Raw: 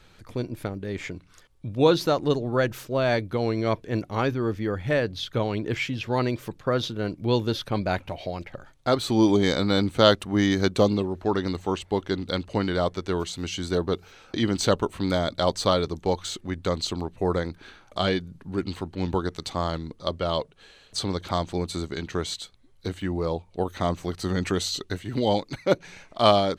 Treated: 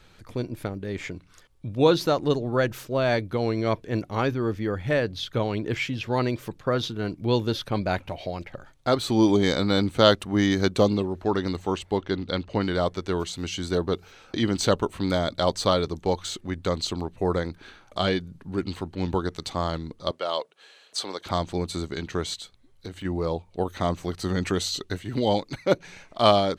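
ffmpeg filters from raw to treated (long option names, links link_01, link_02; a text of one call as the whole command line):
ffmpeg -i in.wav -filter_complex "[0:a]asettb=1/sr,asplit=3[link_01][link_02][link_03];[link_01]atrim=end=6.754[link_04];[link_02]atrim=start=6.75:end=7.21,asetpts=PTS-STARTPTS,afade=type=in:duration=0.004:curve=qsin,afade=type=out:start_time=0.456:duration=0.004:curve=qsin,bandreject=frequency=550:width=5.4[link_05];[link_03]atrim=start=7.206[link_06];[link_04][link_05]acrossfade=duration=0.004:curve1=hsin:curve2=qsin[link_07];[link_07][link_06]acrossfade=duration=0.004:curve1=qsin:curve2=hsin,asettb=1/sr,asplit=3[link_08][link_09][link_10];[link_08]atrim=end=11.974[link_11];[link_09]atrim=start=11.97:end=12.61,asetpts=PTS-STARTPTS,afade=type=in:duration=0.004:curve=qsin,afade=type=out:start_time=0.636:duration=0.004:curve=qsin,lowpass=5100[link_12];[link_10]atrim=start=12.606[link_13];[link_11][link_12]acrossfade=duration=0.004:curve1=hsin:curve2=qsin[link_14];[link_14][link_13]acrossfade=duration=0.004:curve1=qsin:curve2=hsin,asettb=1/sr,asplit=3[link_15][link_16][link_17];[link_15]atrim=end=20.114[link_18];[link_16]atrim=start=20.11:end=21.26,asetpts=PTS-STARTPTS,afade=type=in:duration=0.004:curve=qsin,afade=type=out:start_time=1.146:duration=0.004:curve=qsin,highpass=470[link_19];[link_17]atrim=start=21.256[link_20];[link_18][link_19]acrossfade=duration=0.004:curve1=hsin:curve2=qsin[link_21];[link_21][link_20]acrossfade=duration=0.004:curve1=qsin:curve2=hsin,asplit=3[link_22][link_23][link_24];[link_22]afade=type=out:start_time=22.34:duration=0.02[link_25];[link_23]acompressor=threshold=-35dB:ratio=2.5:attack=3.2:release=140:knee=1:detection=peak,afade=type=in:start_time=22.34:duration=0.02,afade=type=out:start_time=23.04:duration=0.02[link_26];[link_24]afade=type=in:start_time=23.04:duration=0.02[link_27];[link_25][link_26][link_27]amix=inputs=3:normalize=0" out.wav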